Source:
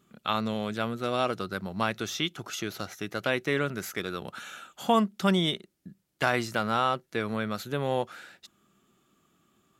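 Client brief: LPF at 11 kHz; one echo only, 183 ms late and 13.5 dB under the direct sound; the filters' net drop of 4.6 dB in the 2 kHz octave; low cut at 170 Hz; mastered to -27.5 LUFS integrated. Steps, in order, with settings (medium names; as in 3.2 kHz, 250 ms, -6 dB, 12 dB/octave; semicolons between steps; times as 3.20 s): high-pass 170 Hz; low-pass 11 kHz; peaking EQ 2 kHz -6.5 dB; delay 183 ms -13.5 dB; trim +3.5 dB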